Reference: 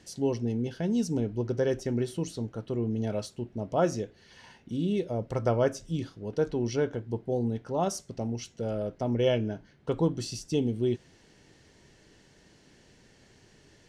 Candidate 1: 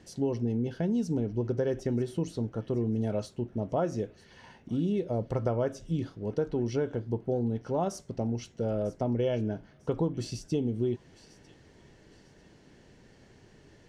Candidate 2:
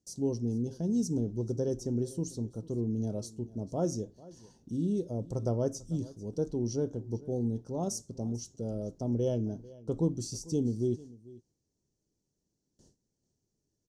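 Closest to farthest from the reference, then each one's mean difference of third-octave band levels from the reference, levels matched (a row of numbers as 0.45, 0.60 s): 1, 2; 2.5, 6.5 dB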